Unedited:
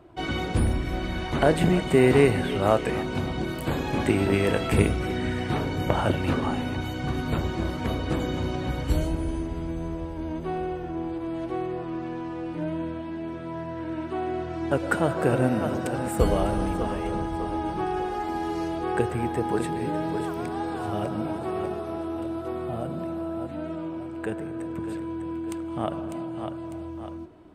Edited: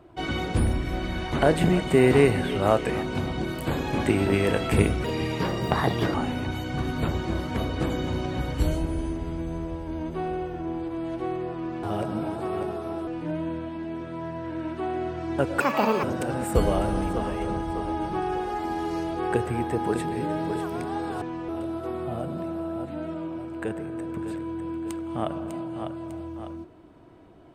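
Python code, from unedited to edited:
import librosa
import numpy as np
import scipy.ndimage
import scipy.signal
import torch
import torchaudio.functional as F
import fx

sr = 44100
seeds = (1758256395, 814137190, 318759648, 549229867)

y = fx.edit(x, sr, fx.speed_span(start_s=5.04, length_s=1.4, speed=1.27),
    fx.swap(start_s=12.13, length_s=0.27, other_s=20.86, other_length_s=1.24),
    fx.speed_span(start_s=14.93, length_s=0.75, speed=1.73), tone=tone)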